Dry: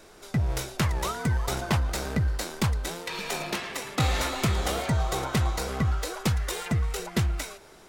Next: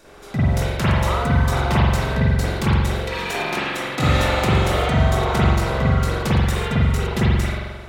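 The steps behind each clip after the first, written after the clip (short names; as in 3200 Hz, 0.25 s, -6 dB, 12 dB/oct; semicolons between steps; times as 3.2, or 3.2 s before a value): spring tank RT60 1.3 s, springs 44 ms, chirp 40 ms, DRR -8.5 dB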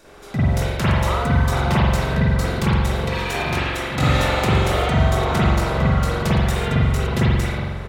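outdoor echo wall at 220 m, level -9 dB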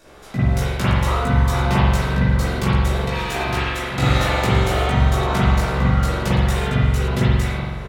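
doubler 16 ms -2 dB; gain -2 dB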